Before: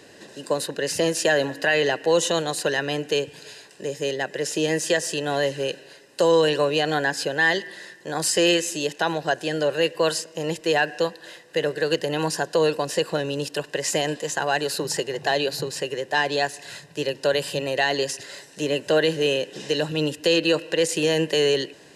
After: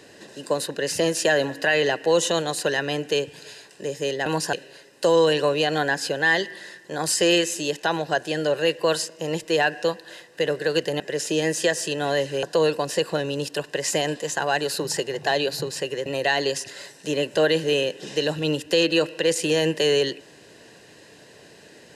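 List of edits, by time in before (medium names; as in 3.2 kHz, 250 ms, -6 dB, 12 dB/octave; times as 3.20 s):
4.26–5.69 s: swap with 12.16–12.43 s
16.06–17.59 s: delete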